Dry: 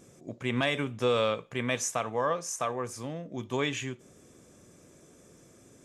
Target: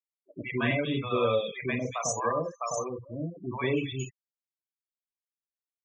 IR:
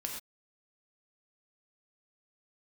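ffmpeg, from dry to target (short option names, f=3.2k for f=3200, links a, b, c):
-filter_complex "[1:a]atrim=start_sample=2205,atrim=end_sample=3087[a];[0:a][a]afir=irnorm=-1:irlink=0,afftfilt=real='re*gte(hypot(re,im),0.0398)':imag='im*gte(hypot(re,im),0.0398)':win_size=1024:overlap=0.75,acrossover=split=710|3200[b][c][d];[b]adelay=100[e];[d]adelay=230[f];[e][c][f]amix=inputs=3:normalize=0,volume=3.5dB"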